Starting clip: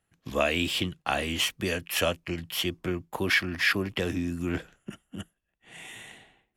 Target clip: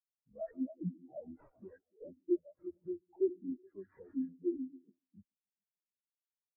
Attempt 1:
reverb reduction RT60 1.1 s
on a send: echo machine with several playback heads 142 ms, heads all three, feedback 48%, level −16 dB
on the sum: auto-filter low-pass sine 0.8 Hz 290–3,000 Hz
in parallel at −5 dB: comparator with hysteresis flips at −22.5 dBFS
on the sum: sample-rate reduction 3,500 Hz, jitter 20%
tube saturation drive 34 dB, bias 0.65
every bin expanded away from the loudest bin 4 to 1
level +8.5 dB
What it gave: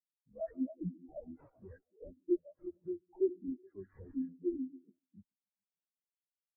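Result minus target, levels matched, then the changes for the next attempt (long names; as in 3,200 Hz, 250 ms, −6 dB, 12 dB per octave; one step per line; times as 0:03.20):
comparator with hysteresis: distortion −13 dB
change: comparator with hysteresis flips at −15.5 dBFS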